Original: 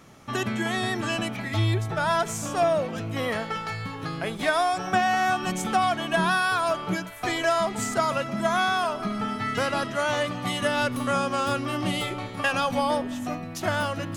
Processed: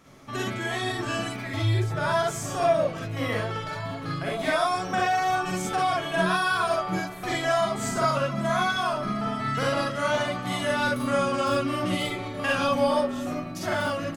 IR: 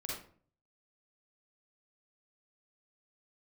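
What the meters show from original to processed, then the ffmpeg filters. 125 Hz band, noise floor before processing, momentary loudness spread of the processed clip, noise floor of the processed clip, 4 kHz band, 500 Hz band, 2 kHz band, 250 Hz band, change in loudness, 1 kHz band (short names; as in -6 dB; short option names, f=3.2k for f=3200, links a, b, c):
+0.5 dB, -36 dBFS, 7 LU, -35 dBFS, -1.0 dB, +1.0 dB, -1.0 dB, -0.5 dB, -0.5 dB, -1.0 dB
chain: -filter_complex "[0:a]asplit=2[a][b];[b]adelay=1691,volume=-11dB,highshelf=f=4k:g=-38[c];[a][c]amix=inputs=2:normalize=0[d];[1:a]atrim=start_sample=2205,atrim=end_sample=3528[e];[d][e]afir=irnorm=-1:irlink=0"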